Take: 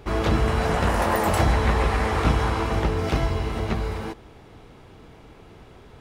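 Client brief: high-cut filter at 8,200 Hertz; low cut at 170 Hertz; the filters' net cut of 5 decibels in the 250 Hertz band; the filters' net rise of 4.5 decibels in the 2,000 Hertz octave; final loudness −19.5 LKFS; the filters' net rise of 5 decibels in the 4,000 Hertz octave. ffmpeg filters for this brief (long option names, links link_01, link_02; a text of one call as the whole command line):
ffmpeg -i in.wav -af "highpass=170,lowpass=8200,equalizer=frequency=250:width_type=o:gain=-5.5,equalizer=frequency=2000:width_type=o:gain=4.5,equalizer=frequency=4000:width_type=o:gain=5,volume=5dB" out.wav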